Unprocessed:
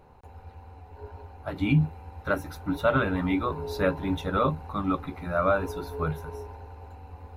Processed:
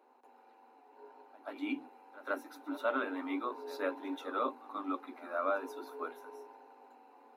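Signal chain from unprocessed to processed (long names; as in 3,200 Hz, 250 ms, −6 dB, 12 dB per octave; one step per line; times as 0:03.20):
Chebyshev high-pass with heavy ripple 240 Hz, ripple 3 dB
echo ahead of the sound 133 ms −18 dB
level −7.5 dB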